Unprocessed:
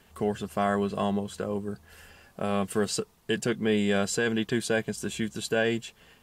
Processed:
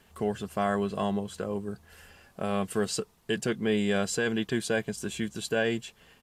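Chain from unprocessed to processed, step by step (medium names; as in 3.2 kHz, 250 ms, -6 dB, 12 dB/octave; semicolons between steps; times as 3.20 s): resampled via 32 kHz; trim -1.5 dB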